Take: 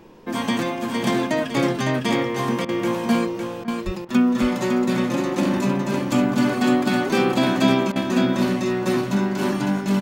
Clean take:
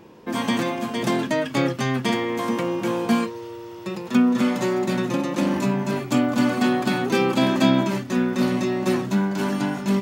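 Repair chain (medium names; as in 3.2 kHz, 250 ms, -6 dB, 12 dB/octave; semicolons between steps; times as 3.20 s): 3.85–3.97 s: high-pass 140 Hz 24 dB/octave; interpolate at 2.65/3.64/4.05/7.92 s, 37 ms; expander -21 dBFS, range -21 dB; inverse comb 557 ms -5 dB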